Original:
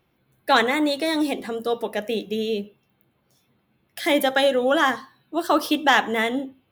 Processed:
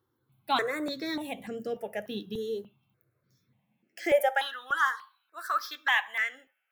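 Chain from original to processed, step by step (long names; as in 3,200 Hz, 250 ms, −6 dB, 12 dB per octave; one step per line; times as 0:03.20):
high-pass filter sweep 110 Hz → 1,400 Hz, 0:03.54–0:04.55
step-sequenced phaser 3.4 Hz 660–3,700 Hz
level −7 dB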